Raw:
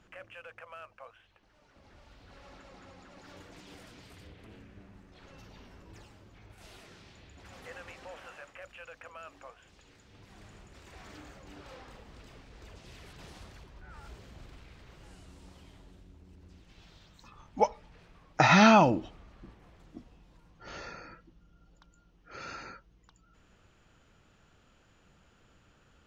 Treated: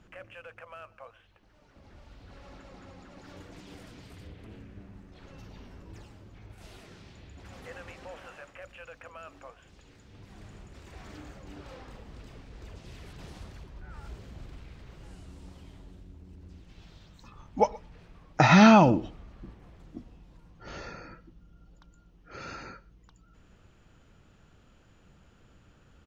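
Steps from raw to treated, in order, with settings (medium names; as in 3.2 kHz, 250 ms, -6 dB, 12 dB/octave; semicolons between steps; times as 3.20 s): bass shelf 420 Hz +6.5 dB; on a send: delay 123 ms -23 dB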